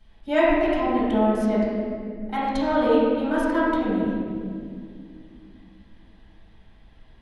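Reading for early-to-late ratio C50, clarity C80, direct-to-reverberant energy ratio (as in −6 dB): −3.5 dB, −0.5 dB, −10.5 dB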